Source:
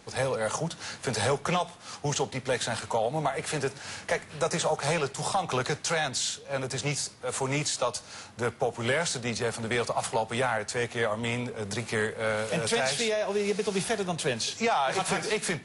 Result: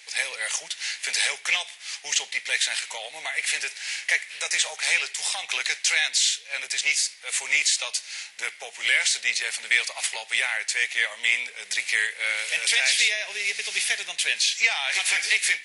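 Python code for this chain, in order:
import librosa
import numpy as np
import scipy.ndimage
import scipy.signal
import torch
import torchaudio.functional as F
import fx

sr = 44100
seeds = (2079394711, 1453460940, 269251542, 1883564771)

y = scipy.signal.sosfilt(scipy.signal.butter(2, 1100.0, 'highpass', fs=sr, output='sos'), x)
y = fx.high_shelf_res(y, sr, hz=1600.0, db=8.5, q=3.0)
y = y * 10.0 ** (-1.0 / 20.0)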